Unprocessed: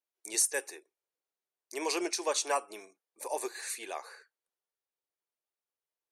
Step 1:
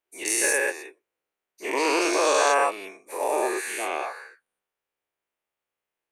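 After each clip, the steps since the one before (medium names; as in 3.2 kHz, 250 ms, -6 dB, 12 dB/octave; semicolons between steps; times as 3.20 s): every event in the spectrogram widened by 240 ms; resonant high shelf 3.4 kHz -7 dB, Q 1.5; trim +3.5 dB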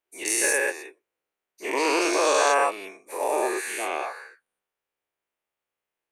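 no audible change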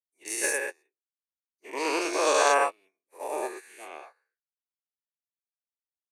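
upward expansion 2.5:1, over -44 dBFS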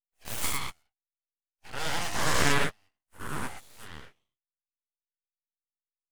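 full-wave rectifier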